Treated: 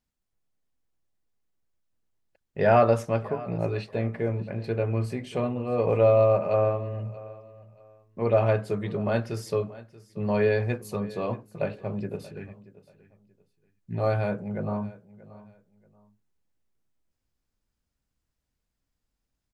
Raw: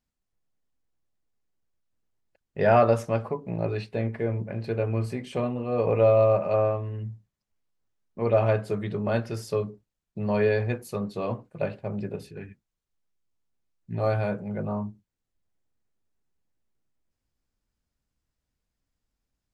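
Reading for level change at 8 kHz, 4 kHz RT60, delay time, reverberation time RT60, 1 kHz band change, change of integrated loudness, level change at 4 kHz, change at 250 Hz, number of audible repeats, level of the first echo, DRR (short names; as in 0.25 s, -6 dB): n/a, none, 0.632 s, none, 0.0 dB, 0.0 dB, 0.0 dB, 0.0 dB, 2, -19.0 dB, none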